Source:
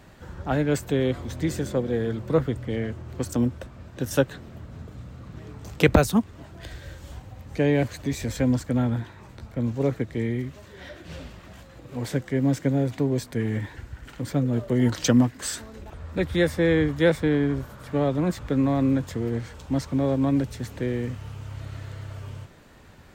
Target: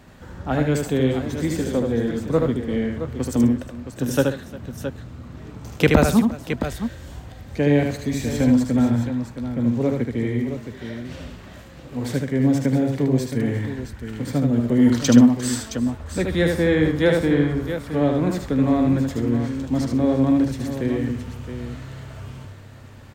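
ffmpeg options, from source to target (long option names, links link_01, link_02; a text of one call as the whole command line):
ffmpeg -i in.wav -filter_complex "[0:a]equalizer=frequency=240:width_type=o:width=0.29:gain=5,asplit=2[link_01][link_02];[link_02]aecho=0:1:47|76|135|353|668:0.119|0.631|0.168|0.112|0.335[link_03];[link_01][link_03]amix=inputs=2:normalize=0,volume=1dB" out.wav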